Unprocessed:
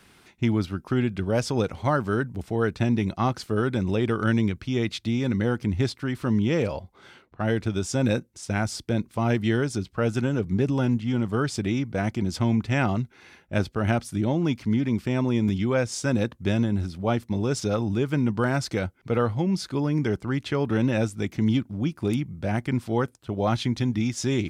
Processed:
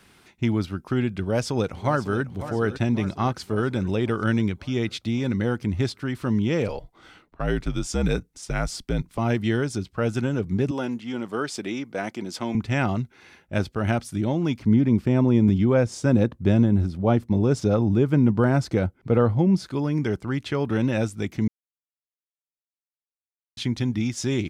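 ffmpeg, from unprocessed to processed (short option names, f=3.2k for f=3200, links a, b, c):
-filter_complex "[0:a]asplit=2[a][b];[b]afade=t=in:st=1.21:d=0.01,afade=t=out:st=2.22:d=0.01,aecho=0:1:550|1100|1650|2200|2750|3300|3850:0.223872|0.134323|0.080594|0.0483564|0.0290138|0.0174083|0.010445[c];[a][c]amix=inputs=2:normalize=0,asettb=1/sr,asplit=3[d][e][f];[d]atrim=end=6.684[g];[e]atrim=start=6.68:end=9.18,asetpts=PTS-STARTPTS,afade=t=in:d=0.004:c=qsin,afade=t=out:st=2.496:d=0.004:c=qsin,afreqshift=-62[h];[f]atrim=start=9.176[i];[g][h]acrossfade=d=0.004:c1=hsin:c2=qsin[j];[j][i]acrossfade=d=0.004:c1=qsin:c2=hsin,asettb=1/sr,asplit=3[k][l][m];[k]atrim=end=10.714[n];[l]atrim=start=10.71:end=12.55,asetpts=PTS-STARTPTS,afade=t=in:d=0.004:c=qsin,afade=t=out:st=1.836:d=0.004:c=qsin,highpass=290[o];[m]atrim=start=12.546[p];[n][o]acrossfade=d=0.004:c1=hsin:c2=qsin[q];[q][p]acrossfade=d=0.004:c1=qsin:c2=hsin,asettb=1/sr,asplit=3[r][s][t];[r]atrim=end=14.594[u];[s]atrim=start=14.59:end=19.66,asetpts=PTS-STARTPTS,afade=t=in:d=0.004:c=qsin,afade=t=out:st=5.066:d=0.004:c=qsin,tiltshelf=f=1.2k:g=5.5[v];[t]atrim=start=19.656[w];[u][v]acrossfade=d=0.004:c1=hsin:c2=qsin[x];[x][w]acrossfade=d=0.004:c1=qsin:c2=hsin,asplit=3[y][z][aa];[y]atrim=end=21.48,asetpts=PTS-STARTPTS,afade=t=out:st=21.476:d=0.004:c=hsin[ab];[z]atrim=start=21.48:end=23.57,asetpts=PTS-STARTPTS,volume=0[ac];[aa]atrim=start=23.57,asetpts=PTS-STARTPTS,afade=t=in:d=0.004:c=hsin[ad];[ab][ac][ad]concat=n=3:v=0:a=1"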